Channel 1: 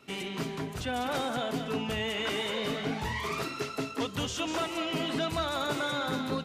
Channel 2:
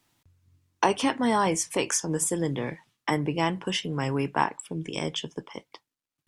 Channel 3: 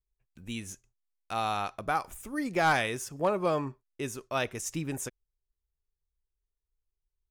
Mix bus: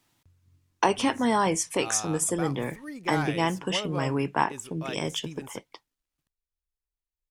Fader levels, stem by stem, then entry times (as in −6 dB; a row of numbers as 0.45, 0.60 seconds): muted, 0.0 dB, −7.0 dB; muted, 0.00 s, 0.50 s